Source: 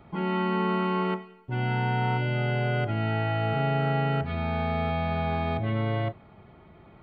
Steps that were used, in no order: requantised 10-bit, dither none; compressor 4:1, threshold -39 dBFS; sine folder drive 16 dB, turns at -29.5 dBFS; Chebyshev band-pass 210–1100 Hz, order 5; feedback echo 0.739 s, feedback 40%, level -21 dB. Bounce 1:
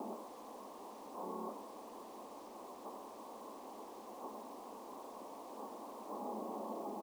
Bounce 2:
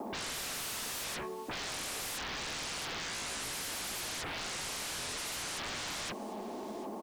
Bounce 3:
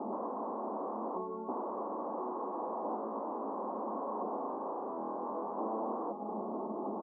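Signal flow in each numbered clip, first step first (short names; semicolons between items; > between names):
feedback echo > sine folder > compressor > Chebyshev band-pass > requantised; Chebyshev band-pass > sine folder > feedback echo > compressor > requantised; compressor > feedback echo > sine folder > requantised > Chebyshev band-pass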